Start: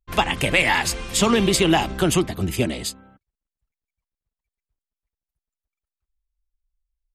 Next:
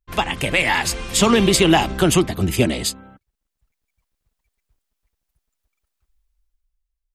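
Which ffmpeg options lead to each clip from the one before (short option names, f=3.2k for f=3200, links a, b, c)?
-af "dynaudnorm=f=100:g=17:m=14dB,volume=-1dB"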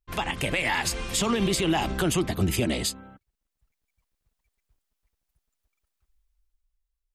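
-af "alimiter=limit=-12.5dB:level=0:latency=1:release=79,volume=-3dB"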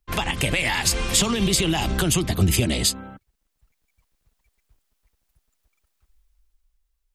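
-filter_complex "[0:a]acrossover=split=160|3000[a][b][c];[b]acompressor=threshold=-34dB:ratio=3[d];[a][d][c]amix=inputs=3:normalize=0,volume=8dB"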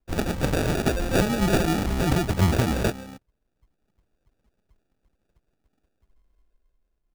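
-af "acrusher=samples=42:mix=1:aa=0.000001,volume=-1dB"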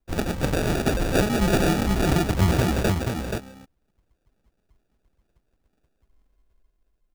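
-af "aecho=1:1:480:0.562"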